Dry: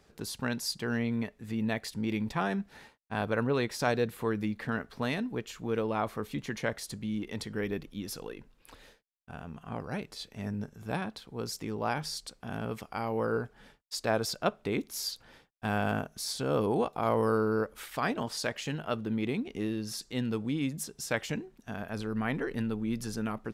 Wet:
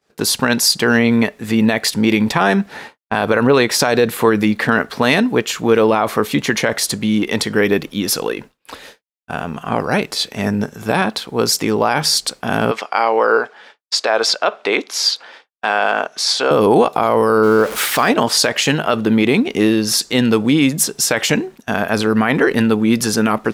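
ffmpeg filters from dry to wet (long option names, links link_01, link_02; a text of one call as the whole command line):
ffmpeg -i in.wav -filter_complex "[0:a]asettb=1/sr,asplit=3[link_01][link_02][link_03];[link_01]atrim=end=2.684[link_04];[link_02]atrim=start=2.68:end=3.14,asetpts=PTS-STARTPTS,afade=type=in:duration=0.004:curve=qsin,afade=type=out:start_time=0.456:duration=0.004:curve=qsin,highshelf=frequency=3400:gain=-7[link_05];[link_03]atrim=start=3.136[link_06];[link_04][link_05]acrossfade=duration=0.004:curve1=hsin:curve2=qsin[link_07];[link_07][link_06]acrossfade=duration=0.004:curve1=qsin:curve2=hsin,asettb=1/sr,asplit=3[link_08][link_09][link_10];[link_08]atrim=end=12.714[link_11];[link_09]atrim=start=12.71:end=16.51,asetpts=PTS-STARTPTS,afade=type=in:duration=0.004:curve=qsin,afade=type=out:start_time=3.796:duration=0.004:curve=qsin,highpass=510,lowpass=5100[link_12];[link_10]atrim=start=16.506[link_13];[link_11][link_12]acrossfade=duration=0.004:curve1=hsin:curve2=qsin[link_14];[link_14][link_13]acrossfade=duration=0.004:curve1=qsin:curve2=hsin,asettb=1/sr,asplit=3[link_15][link_16][link_17];[link_15]atrim=end=17.434[link_18];[link_16]atrim=start=17.43:end=18.09,asetpts=PTS-STARTPTS,afade=type=in:duration=0.004:curve=qsin,afade=type=out:start_time=0.656:duration=0.004:curve=qsin,aeval=exprs='val(0)+0.5*0.00708*sgn(val(0))':channel_layout=same[link_19];[link_17]atrim=start=18.086[link_20];[link_18][link_19]acrossfade=duration=0.004:curve1=hsin:curve2=qsin[link_21];[link_21][link_20]acrossfade=duration=0.004:curve1=qsin:curve2=hsin,highpass=frequency=320:poles=1,agate=range=-33dB:threshold=-52dB:ratio=3:detection=peak,alimiter=level_in=24.5dB:limit=-1dB:release=50:level=0:latency=1,volume=-2dB" out.wav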